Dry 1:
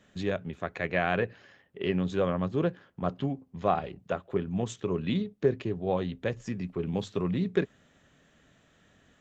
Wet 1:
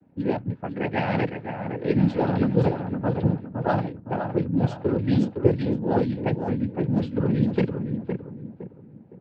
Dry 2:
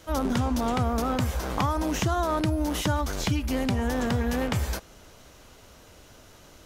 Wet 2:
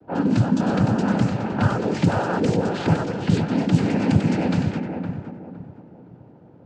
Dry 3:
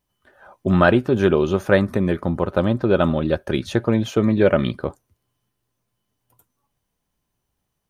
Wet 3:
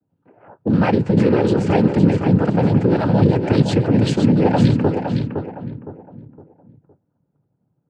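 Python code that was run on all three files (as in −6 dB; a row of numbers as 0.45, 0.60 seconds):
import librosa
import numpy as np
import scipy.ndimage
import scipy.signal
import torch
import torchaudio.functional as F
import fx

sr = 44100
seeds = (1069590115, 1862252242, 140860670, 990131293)

p1 = fx.over_compress(x, sr, threshold_db=-22.0, ratio=-0.5)
p2 = x + (p1 * librosa.db_to_amplitude(2.5))
p3 = fx.noise_vocoder(p2, sr, seeds[0], bands=8)
p4 = fx.notch(p3, sr, hz=1100.0, q=9.0)
p5 = p4 + fx.echo_feedback(p4, sr, ms=512, feedback_pct=35, wet_db=-6.5, dry=0)
p6 = fx.env_lowpass(p5, sr, base_hz=730.0, full_db=-12.5)
p7 = fx.low_shelf(p6, sr, hz=360.0, db=10.5)
y = p7 * librosa.db_to_amplitude(-7.0)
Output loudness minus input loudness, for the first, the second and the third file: +6.0, +5.5, +3.0 LU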